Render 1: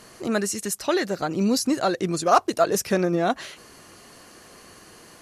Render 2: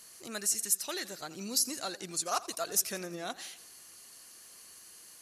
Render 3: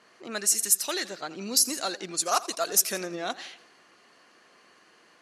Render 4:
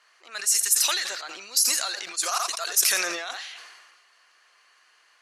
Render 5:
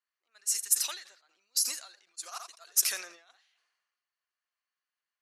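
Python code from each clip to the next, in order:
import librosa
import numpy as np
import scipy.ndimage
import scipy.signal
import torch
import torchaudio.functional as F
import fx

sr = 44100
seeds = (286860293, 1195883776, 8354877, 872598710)

y1 = librosa.effects.preemphasis(x, coef=0.9, zi=[0.0])
y1 = fx.echo_warbled(y1, sr, ms=85, feedback_pct=54, rate_hz=2.8, cents=112, wet_db=-18)
y2 = scipy.signal.sosfilt(scipy.signal.butter(2, 210.0, 'highpass', fs=sr, output='sos'), y1)
y2 = fx.env_lowpass(y2, sr, base_hz=1700.0, full_db=-29.0)
y2 = y2 * 10.0 ** (7.0 / 20.0)
y3 = scipy.signal.sosfilt(scipy.signal.butter(2, 1100.0, 'highpass', fs=sr, output='sos'), y2)
y3 = fx.sustainer(y3, sr, db_per_s=38.0)
y4 = fx.upward_expand(y3, sr, threshold_db=-37.0, expansion=2.5)
y4 = y4 * 10.0 ** (-2.5 / 20.0)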